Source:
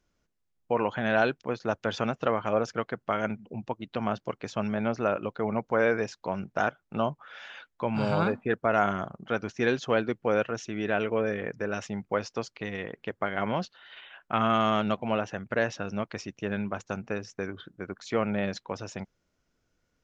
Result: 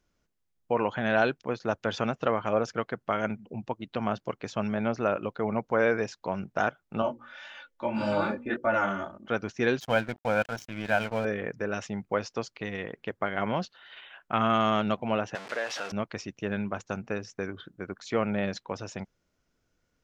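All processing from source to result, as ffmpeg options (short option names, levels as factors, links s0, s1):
-filter_complex "[0:a]asettb=1/sr,asplit=3[s0][s1][s2];[s0]atrim=end=7.024[s3];[s1]atrim=start=7.02:end=9.28,asetpts=PTS-STARTPTS,afade=t=in:d=0.004:c=qsin,afade=t=out:st=2.256:d=0.004:c=qsin,bandreject=f=60:t=h:w=6,bandreject=f=120:t=h:w=6,bandreject=f=180:t=h:w=6,bandreject=f=240:t=h:w=6,bandreject=f=300:t=h:w=6,bandreject=f=360:t=h:w=6,bandreject=f=420:t=h:w=6,bandreject=f=480:t=h:w=6,bandreject=f=540:t=h:w=6,aecho=1:1:3.4:0.83,atrim=end_sample=99666,flanger=delay=19:depth=6.2:speed=1.8[s4];[s2]atrim=start=9.276[s5];[s3][s4]acrossfade=d=0.004:c1=hsin:c2=qsin[s6];[s6][s5]acrossfade=d=0.004:c1=qsin:c2=hsin,asettb=1/sr,asplit=3[s7][s8][s9];[s7]atrim=end=9.804[s10];[s8]atrim=start=9.8:end=11.25,asetpts=PTS-STARTPTS,afade=t=in:d=0.004:c=qsin,afade=t=out:st=1.446:d=0.004:c=qsin,bandreject=f=50:t=h:w=6,bandreject=f=100:t=h:w=6,bandreject=f=150:t=h:w=6,bandreject=f=200:t=h:w=6,bandreject=f=250:t=h:w=6,bandreject=f=300:t=h:w=6,bandreject=f=350:t=h:w=6,aecho=1:1:1.3:0.75,atrim=end_sample=63945,aeval=exprs='sgn(val(0))*max(abs(val(0))-0.00944,0)':c=same[s11];[s9]atrim=start=11.246[s12];[s10][s11]acrossfade=d=0.004:c1=hsin:c2=qsin[s13];[s13][s12]acrossfade=d=0.004:c1=qsin:c2=hsin,asettb=1/sr,asplit=3[s14][s15][s16];[s14]atrim=end=15.354[s17];[s15]atrim=start=15.35:end=15.92,asetpts=PTS-STARTPTS,afade=t=in:d=0.004:c=qsin,afade=t=out:st=0.566:d=0.004:c=qsin,aeval=exprs='val(0)+0.5*0.0316*sgn(val(0))':c=same,acompressor=threshold=0.0501:ratio=2:attack=3.2:release=140:knee=1:detection=peak,highpass=540,lowpass=5700[s18];[s16]atrim=start=15.916[s19];[s17][s18]acrossfade=d=0.004:c1=hsin:c2=qsin[s20];[s20][s19]acrossfade=d=0.004:c1=qsin:c2=hsin"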